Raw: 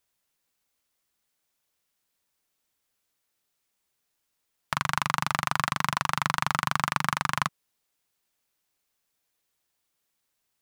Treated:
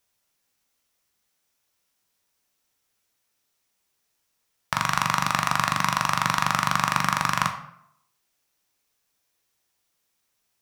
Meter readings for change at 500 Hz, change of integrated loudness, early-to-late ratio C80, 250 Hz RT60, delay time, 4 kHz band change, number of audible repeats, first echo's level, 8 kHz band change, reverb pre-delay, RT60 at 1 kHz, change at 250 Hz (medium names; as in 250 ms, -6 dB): +3.5 dB, +4.0 dB, 12.5 dB, 0.70 s, no echo, +3.5 dB, no echo, no echo, +5.0 dB, 10 ms, 0.70 s, +4.5 dB